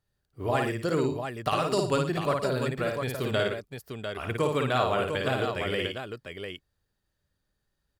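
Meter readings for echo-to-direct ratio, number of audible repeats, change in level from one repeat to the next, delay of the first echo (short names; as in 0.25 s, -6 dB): -1.5 dB, 3, no steady repeat, 55 ms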